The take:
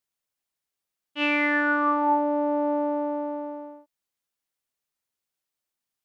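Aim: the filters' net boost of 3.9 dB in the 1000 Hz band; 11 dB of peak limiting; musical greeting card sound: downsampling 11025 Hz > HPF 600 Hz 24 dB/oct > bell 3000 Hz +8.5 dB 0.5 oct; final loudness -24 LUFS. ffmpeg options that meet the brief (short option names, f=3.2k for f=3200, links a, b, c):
-af "equalizer=f=1k:t=o:g=4.5,alimiter=limit=-21dB:level=0:latency=1,aresample=11025,aresample=44100,highpass=f=600:w=0.5412,highpass=f=600:w=1.3066,equalizer=f=3k:t=o:w=0.5:g=8.5,volume=6.5dB"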